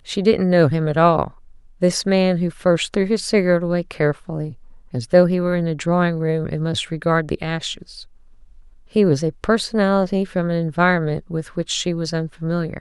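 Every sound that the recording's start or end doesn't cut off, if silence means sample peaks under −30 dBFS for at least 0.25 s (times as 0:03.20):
0:01.82–0:04.53
0:04.94–0:08.02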